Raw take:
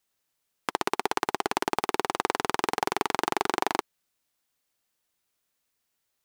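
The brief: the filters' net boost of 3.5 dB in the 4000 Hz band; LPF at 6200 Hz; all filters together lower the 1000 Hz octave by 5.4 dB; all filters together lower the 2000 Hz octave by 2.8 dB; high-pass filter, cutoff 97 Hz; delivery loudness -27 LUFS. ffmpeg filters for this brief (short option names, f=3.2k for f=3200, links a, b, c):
-af "highpass=97,lowpass=6.2k,equalizer=f=1k:t=o:g=-6.5,equalizer=f=2k:t=o:g=-3,equalizer=f=4k:t=o:g=6.5,volume=4dB"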